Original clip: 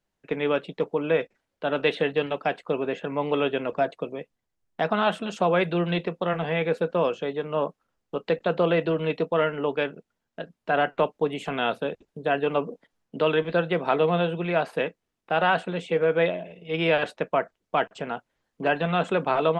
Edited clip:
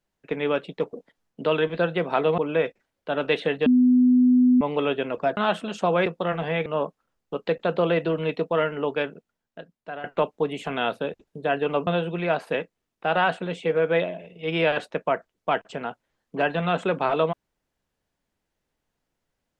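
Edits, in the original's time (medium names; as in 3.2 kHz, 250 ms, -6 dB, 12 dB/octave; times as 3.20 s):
2.21–3.16 s: bleep 250 Hz -13.5 dBFS
3.92–4.95 s: delete
5.64–6.07 s: delete
6.67–7.47 s: delete
9.89–10.85 s: fade out, to -16 dB
12.68–14.13 s: move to 0.93 s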